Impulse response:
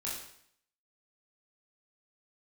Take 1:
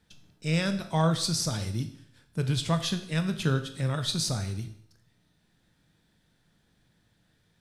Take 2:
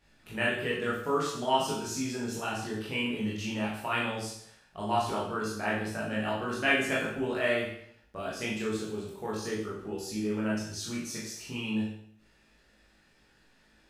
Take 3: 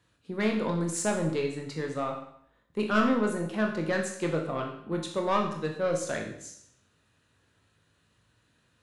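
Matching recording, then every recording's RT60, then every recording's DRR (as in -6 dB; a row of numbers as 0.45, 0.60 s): 2; 0.65, 0.65, 0.65 s; 8.0, -6.5, 1.5 dB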